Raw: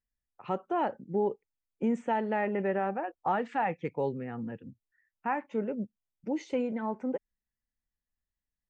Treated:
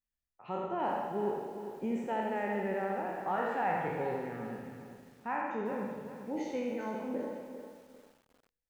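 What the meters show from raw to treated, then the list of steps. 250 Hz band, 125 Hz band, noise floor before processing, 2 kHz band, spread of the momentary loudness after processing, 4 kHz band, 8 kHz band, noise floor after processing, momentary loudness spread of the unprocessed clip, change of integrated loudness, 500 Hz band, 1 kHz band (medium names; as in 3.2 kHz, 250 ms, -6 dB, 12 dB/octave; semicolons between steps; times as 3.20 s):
-4.0 dB, -3.5 dB, under -85 dBFS, -1.0 dB, 12 LU, -1.0 dB, no reading, under -85 dBFS, 10 LU, -3.0 dB, -2.5 dB, -2.0 dB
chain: spectral sustain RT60 1.17 s; bucket-brigade echo 82 ms, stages 2048, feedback 41%, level -5.5 dB; bit-crushed delay 399 ms, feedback 35%, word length 8-bit, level -10 dB; trim -7.5 dB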